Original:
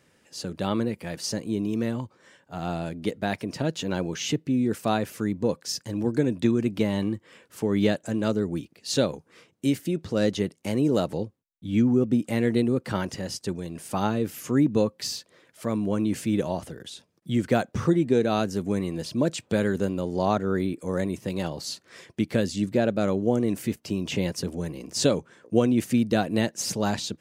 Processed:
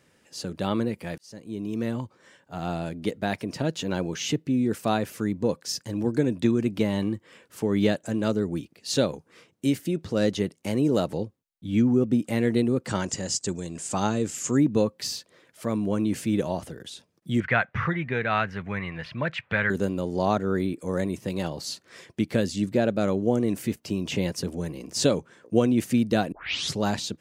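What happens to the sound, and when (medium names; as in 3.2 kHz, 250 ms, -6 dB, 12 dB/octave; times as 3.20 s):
1.18–1.95 s: fade in
12.87–14.57 s: resonant low-pass 7.4 kHz, resonance Q 6.2
17.40–19.70 s: FFT filter 140 Hz 0 dB, 300 Hz -14 dB, 2 kHz +14 dB, 7.6 kHz -24 dB
26.32 s: tape start 0.48 s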